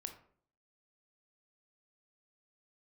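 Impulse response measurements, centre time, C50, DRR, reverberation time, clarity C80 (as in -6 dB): 12 ms, 10.0 dB, 6.0 dB, 0.55 s, 14.0 dB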